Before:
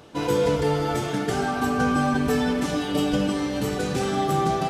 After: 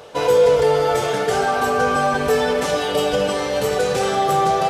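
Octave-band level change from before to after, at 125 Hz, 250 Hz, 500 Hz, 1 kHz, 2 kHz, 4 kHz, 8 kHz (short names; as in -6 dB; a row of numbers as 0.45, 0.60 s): -2.5, -5.0, +9.0, +7.5, +6.0, +6.0, +6.0 dB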